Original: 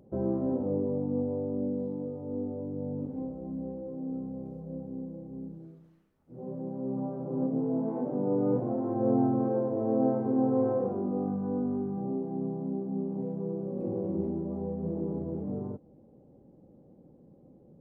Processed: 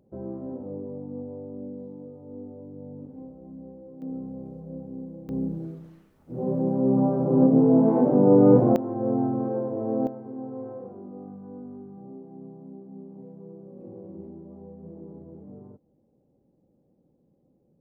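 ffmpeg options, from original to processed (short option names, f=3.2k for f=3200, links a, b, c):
-af "asetnsamples=n=441:p=0,asendcmd='4.02 volume volume 1dB;5.29 volume volume 12dB;8.76 volume volume 0.5dB;10.07 volume volume -10dB',volume=-6dB"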